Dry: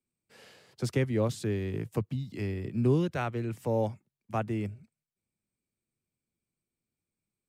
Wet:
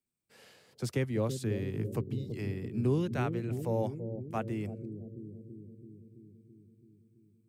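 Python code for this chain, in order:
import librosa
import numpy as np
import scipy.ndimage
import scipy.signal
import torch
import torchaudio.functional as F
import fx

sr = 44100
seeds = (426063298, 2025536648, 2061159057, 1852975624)

p1 = fx.high_shelf(x, sr, hz=9500.0, db=6.0)
p2 = p1 + fx.echo_bbd(p1, sr, ms=331, stages=1024, feedback_pct=70, wet_db=-7.0, dry=0)
y = p2 * 10.0 ** (-3.5 / 20.0)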